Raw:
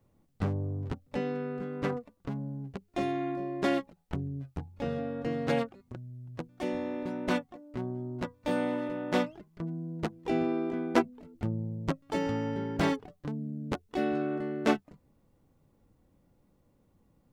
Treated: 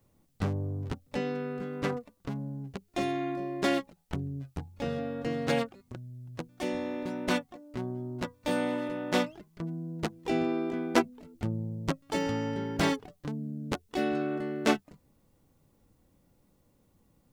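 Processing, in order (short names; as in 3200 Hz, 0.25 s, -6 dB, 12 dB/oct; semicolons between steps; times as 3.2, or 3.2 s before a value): high shelf 3000 Hz +8.5 dB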